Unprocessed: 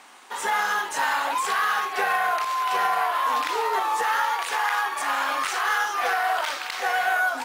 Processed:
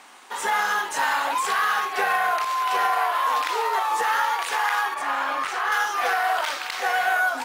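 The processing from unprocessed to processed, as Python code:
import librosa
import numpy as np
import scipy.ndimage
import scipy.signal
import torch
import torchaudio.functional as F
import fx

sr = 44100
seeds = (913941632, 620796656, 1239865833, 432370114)

y = fx.highpass(x, sr, hz=fx.line((2.59, 170.0), (3.89, 510.0)), slope=24, at=(2.59, 3.89), fade=0.02)
y = fx.high_shelf(y, sr, hz=3400.0, db=-10.0, at=(4.94, 5.72))
y = F.gain(torch.from_numpy(y), 1.0).numpy()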